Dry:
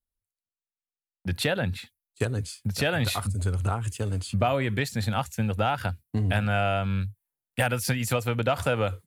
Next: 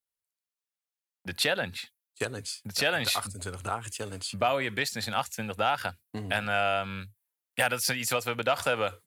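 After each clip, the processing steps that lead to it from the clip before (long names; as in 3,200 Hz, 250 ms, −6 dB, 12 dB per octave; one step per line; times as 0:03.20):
high-pass filter 630 Hz 6 dB per octave
dynamic equaliser 5,000 Hz, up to +4 dB, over −47 dBFS, Q 2.2
level +1.5 dB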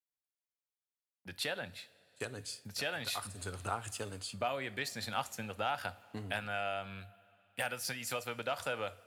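coupled-rooms reverb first 0.38 s, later 3.9 s, from −18 dB, DRR 14.5 dB
speech leveller within 4 dB 0.5 s
level −8.5 dB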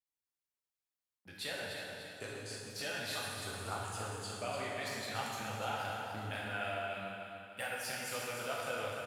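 repeating echo 296 ms, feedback 46%, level −7 dB
dense smooth reverb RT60 2 s, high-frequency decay 0.85×, DRR −4 dB
level −7 dB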